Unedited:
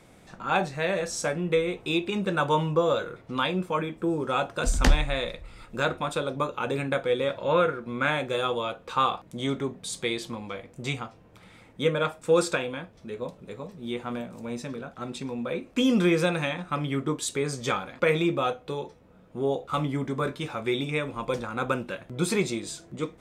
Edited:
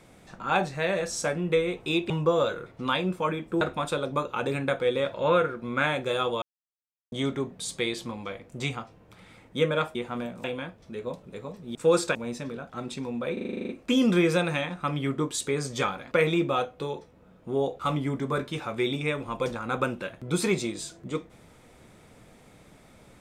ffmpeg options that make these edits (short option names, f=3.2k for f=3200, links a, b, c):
-filter_complex "[0:a]asplit=18[a][b][c][d][e][f][g][h][i][j][k][l][m][n][o][p][q][r];[a]atrim=end=2.102[s];[b]atrim=start=2.598:end=4.112[t];[c]atrim=start=5.848:end=8.66,asetpts=PTS-STARTPTS,afade=t=out:st=2.808:d=0.004:c=hsin[u];[d]atrim=start=8.66:end=9.36,asetpts=PTS-STARTPTS,volume=0[v];[e]atrim=start=9.36:end=12.192,asetpts=PTS-STARTPTS,afade=t=in:d=0.004:c=hsin[w];[f]atrim=start=13.898:end=14.392[x];[g]atrim=start=12.588:end=13.902[y];[h]atrim=start=12.188:end=12.592[z];[i]atrim=start=14.388:end=15.612[aa];[j]atrim=start=15.568:end=15.612[ab];[k]atrim=start=15.568:end=15.612[ac];[l]atrim=start=15.568:end=15.612[ad];[m]atrim=start=15.568:end=15.612[ae];[n]atrim=start=15.568:end=15.612[af];[o]atrim=start=15.568:end=15.612[ag];[p]atrim=start=15.568:end=15.612[ah];[q]atrim=start=15.568:end=15.612[ai];[r]atrim=start=15.568[aj];[s][t]acrossfade=d=0.004:c1=hsin:c2=hsin[ak];[u][v][w]concat=n=3:v=0:a=1[al];[ak][al]acrossfade=d=0.004:c1=hsin:c2=hsin[am];[am][x]acrossfade=d=0.004:c1=hsin:c2=hsin[an];[an][y]acrossfade=d=0.004:c1=hsin:c2=hsin[ao];[ao][z]acrossfade=d=0.004:c1=hsin:c2=hsin[ap];[ap][aa]acrossfade=d=0.004:c1=hsin:c2=hsin[aq];[aq][ab]acrossfade=d=0.004:c1=hsin:c2=hsin[ar];[ar][ac]acrossfade=d=0.004:c1=hsin:c2=hsin[as];[as][ad]acrossfade=d=0.004:c1=hsin:c2=hsin[at];[at][ae]acrossfade=d=0.004:c1=hsin:c2=hsin[au];[au][af]acrossfade=d=0.004:c1=hsin:c2=hsin[av];[av][ag]acrossfade=d=0.004:c1=hsin:c2=hsin[aw];[aw][ah]acrossfade=d=0.004:c1=hsin:c2=hsin[ax];[ax][ai]acrossfade=d=0.004:c1=hsin:c2=hsin[ay];[ay][aj]acrossfade=d=0.004:c1=hsin:c2=hsin"